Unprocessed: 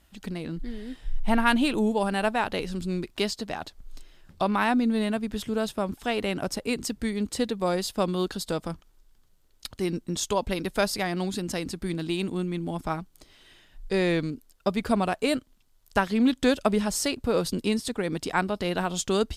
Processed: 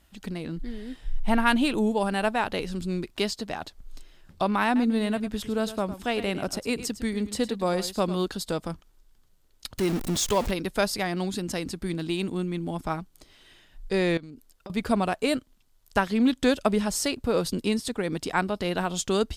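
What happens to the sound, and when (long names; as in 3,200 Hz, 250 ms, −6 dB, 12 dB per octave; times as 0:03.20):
0:04.65–0:08.26: single-tap delay 106 ms −13.5 dB
0:09.78–0:10.51: converter with a step at zero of −28 dBFS
0:14.17–0:14.70: downward compressor 16 to 1, threshold −38 dBFS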